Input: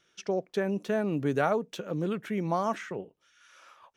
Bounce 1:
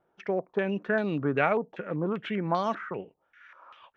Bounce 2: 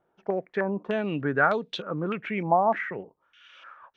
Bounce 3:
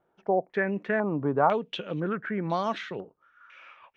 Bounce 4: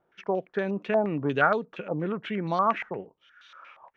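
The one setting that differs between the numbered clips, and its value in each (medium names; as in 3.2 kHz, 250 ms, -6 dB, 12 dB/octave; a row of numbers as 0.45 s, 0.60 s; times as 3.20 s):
step-sequenced low-pass, rate: 5.1 Hz, 3.3 Hz, 2 Hz, 8.5 Hz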